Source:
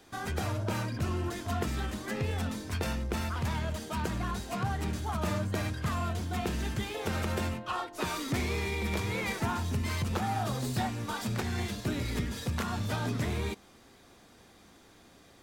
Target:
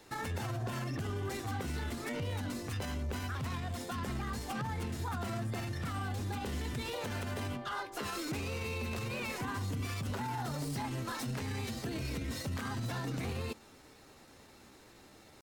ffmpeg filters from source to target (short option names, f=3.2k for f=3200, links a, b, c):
-af "alimiter=level_in=5.5dB:limit=-24dB:level=0:latency=1:release=77,volume=-5.5dB,asetrate=49501,aresample=44100,atempo=0.890899"